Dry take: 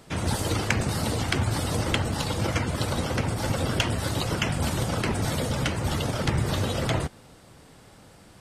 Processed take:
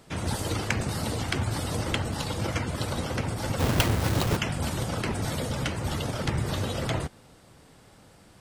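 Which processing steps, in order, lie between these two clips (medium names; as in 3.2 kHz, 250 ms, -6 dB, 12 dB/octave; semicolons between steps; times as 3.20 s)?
3.59–4.37 s: square wave that keeps the level; trim -3 dB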